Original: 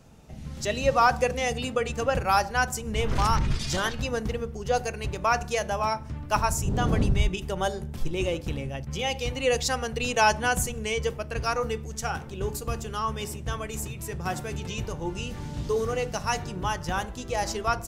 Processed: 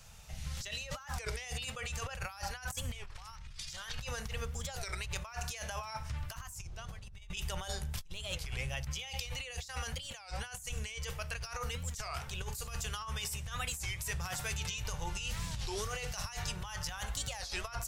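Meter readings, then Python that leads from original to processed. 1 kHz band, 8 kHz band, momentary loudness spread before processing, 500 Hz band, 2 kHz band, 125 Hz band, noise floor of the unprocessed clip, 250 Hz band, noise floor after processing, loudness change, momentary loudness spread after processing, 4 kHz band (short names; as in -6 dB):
-17.5 dB, -6.0 dB, 10 LU, -19.0 dB, -11.0 dB, -10.0 dB, -39 dBFS, -18.0 dB, -49 dBFS, -12.0 dB, 6 LU, -6.5 dB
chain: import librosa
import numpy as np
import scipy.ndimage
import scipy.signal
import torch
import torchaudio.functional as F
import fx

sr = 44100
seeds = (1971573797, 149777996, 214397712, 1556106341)

y = fx.tone_stack(x, sr, knobs='10-0-10')
y = fx.over_compress(y, sr, threshold_db=-43.0, ratio=-1.0)
y = fx.record_warp(y, sr, rpm=33.33, depth_cents=250.0)
y = F.gain(torch.from_numpy(y), 2.0).numpy()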